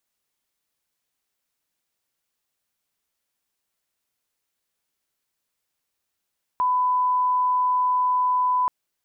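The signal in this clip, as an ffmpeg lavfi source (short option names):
-f lavfi -i "sine=f=1000:d=2.08:r=44100,volume=0.06dB"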